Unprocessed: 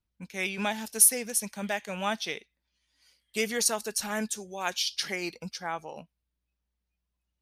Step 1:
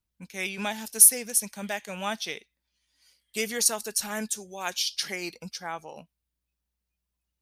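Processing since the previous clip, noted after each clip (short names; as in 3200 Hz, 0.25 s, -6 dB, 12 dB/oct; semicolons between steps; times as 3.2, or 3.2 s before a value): high shelf 5500 Hz +7 dB; gain -1.5 dB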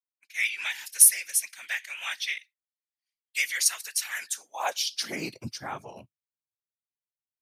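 whisperiser; high-pass sweep 2000 Hz -> 110 Hz, 4.23–5.37; expander -42 dBFS; gain -1 dB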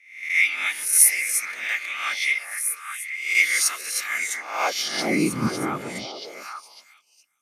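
spectral swells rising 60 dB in 0.59 s; small resonant body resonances 200/290/1200/2100 Hz, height 14 dB, ringing for 25 ms; on a send: delay with a stepping band-pass 0.412 s, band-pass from 530 Hz, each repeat 1.4 oct, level -2 dB; on the sum: gain -1.5 dB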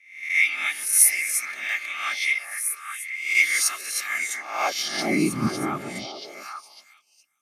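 notch comb 490 Hz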